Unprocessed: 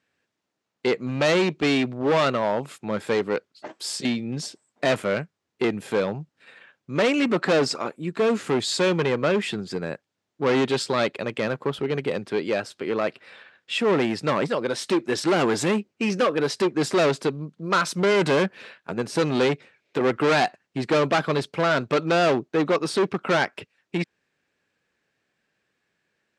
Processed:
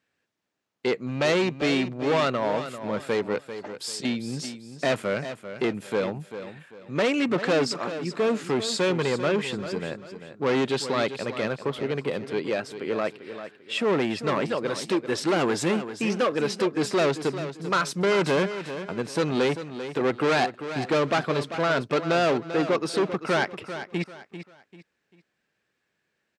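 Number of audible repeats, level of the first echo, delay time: 3, -11.0 dB, 393 ms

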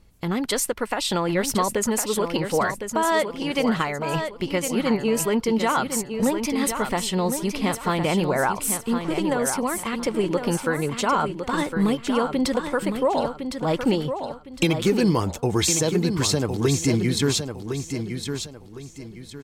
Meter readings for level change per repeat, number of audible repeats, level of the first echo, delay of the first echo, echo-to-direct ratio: -10.0 dB, 3, -7.5 dB, 1059 ms, -7.0 dB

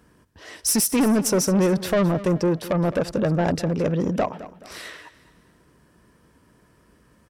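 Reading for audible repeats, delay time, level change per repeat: 3, 213 ms, -8.0 dB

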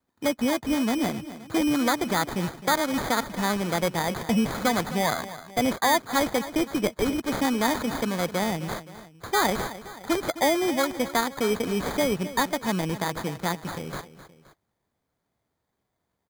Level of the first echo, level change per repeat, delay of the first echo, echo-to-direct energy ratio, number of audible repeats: -14.5 dB, -6.0 dB, 261 ms, -13.5 dB, 2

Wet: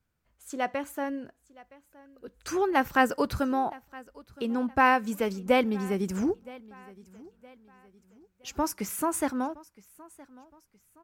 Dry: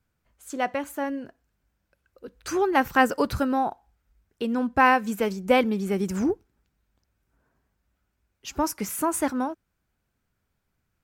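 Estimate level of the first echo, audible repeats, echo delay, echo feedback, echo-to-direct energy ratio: -22.0 dB, 2, 967 ms, 38%, -21.5 dB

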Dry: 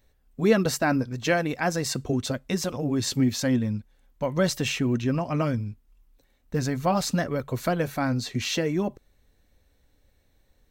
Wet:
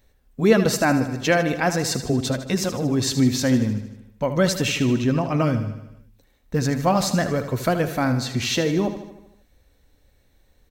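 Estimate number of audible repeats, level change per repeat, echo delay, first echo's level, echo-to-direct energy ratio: 6, -4.5 dB, 77 ms, -11.0 dB, -9.0 dB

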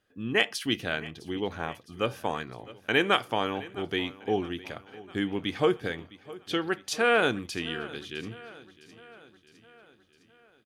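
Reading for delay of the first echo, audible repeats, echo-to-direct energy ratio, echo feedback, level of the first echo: 659 ms, 4, -17.5 dB, 57%, -19.0 dB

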